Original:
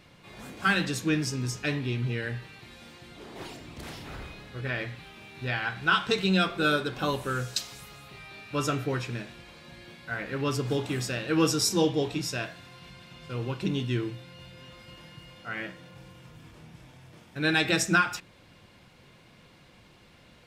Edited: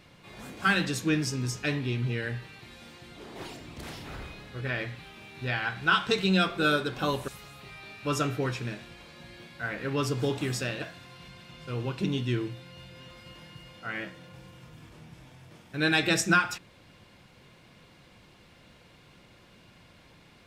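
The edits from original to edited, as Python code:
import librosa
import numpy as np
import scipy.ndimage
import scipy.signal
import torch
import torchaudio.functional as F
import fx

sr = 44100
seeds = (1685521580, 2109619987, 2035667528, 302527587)

y = fx.edit(x, sr, fx.cut(start_s=7.28, length_s=0.48),
    fx.cut(start_s=11.3, length_s=1.14), tone=tone)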